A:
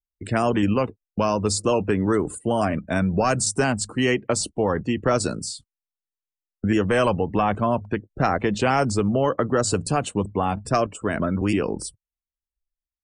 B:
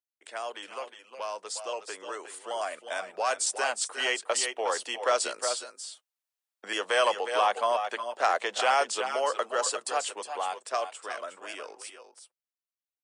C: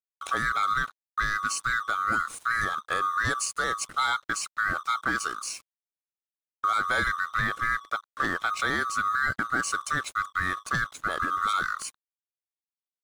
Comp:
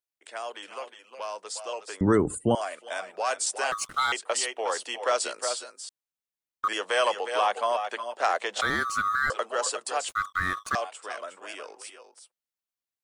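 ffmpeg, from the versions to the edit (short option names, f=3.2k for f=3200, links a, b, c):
-filter_complex "[2:a]asplit=4[a][b][c][d];[1:a]asplit=6[e][f][g][h][i][j];[e]atrim=end=2.012[k];[0:a]atrim=start=2.008:end=2.552[l];[f]atrim=start=2.548:end=3.722[m];[a]atrim=start=3.718:end=4.122[n];[g]atrim=start=4.118:end=5.892[o];[b]atrim=start=5.888:end=6.682[p];[h]atrim=start=6.678:end=8.612[q];[c]atrim=start=8.608:end=9.302[r];[i]atrim=start=9.298:end=10.092[s];[d]atrim=start=10.088:end=10.752[t];[j]atrim=start=10.748[u];[k][l]acrossfade=d=0.004:c1=hsin:c2=hsin[v];[v][m]acrossfade=d=0.004:c1=hsin:c2=hsin[w];[w][n]acrossfade=d=0.004:c1=hsin:c2=hsin[x];[x][o]acrossfade=d=0.004:c1=hsin:c2=hsin[y];[y][p]acrossfade=d=0.004:c1=hsin:c2=hsin[z];[z][q]acrossfade=d=0.004:c1=hsin:c2=hsin[aa];[aa][r]acrossfade=d=0.004:c1=hsin:c2=hsin[ab];[ab][s]acrossfade=d=0.004:c1=hsin:c2=hsin[ac];[ac][t]acrossfade=d=0.004:c1=hsin:c2=hsin[ad];[ad][u]acrossfade=d=0.004:c1=hsin:c2=hsin"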